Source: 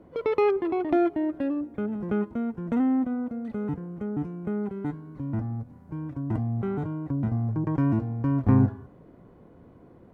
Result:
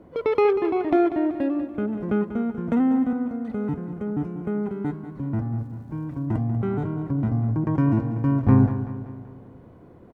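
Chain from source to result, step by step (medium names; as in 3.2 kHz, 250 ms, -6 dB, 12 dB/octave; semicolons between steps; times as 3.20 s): 5.57–6.26 s: crackle 290 per s -60 dBFS; feedback delay 191 ms, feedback 52%, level -11.5 dB; 2.68–3.13 s: three bands compressed up and down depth 40%; trim +3 dB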